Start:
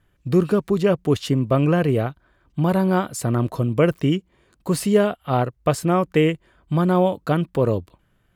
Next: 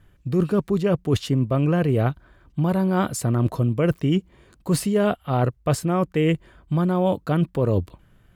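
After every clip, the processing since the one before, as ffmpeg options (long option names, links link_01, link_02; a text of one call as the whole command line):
ffmpeg -i in.wav -af "lowshelf=frequency=220:gain=5.5,areverse,acompressor=threshold=-22dB:ratio=6,areverse,volume=4.5dB" out.wav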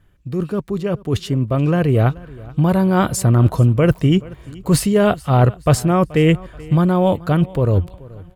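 ffmpeg -i in.wav -af "dynaudnorm=framelen=460:gausssize=7:maxgain=11.5dB,aecho=1:1:430|860|1290:0.0841|0.0311|0.0115,asubboost=boost=2.5:cutoff=120,volume=-1dB" out.wav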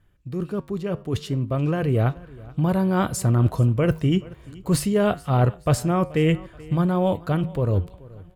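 ffmpeg -i in.wav -af "flanger=delay=8.5:depth=2.4:regen=-84:speed=0.55:shape=triangular,volume=-1.5dB" out.wav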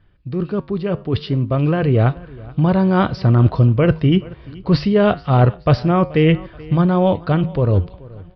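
ffmpeg -i in.wav -af "aresample=11025,aresample=44100,volume=6dB" out.wav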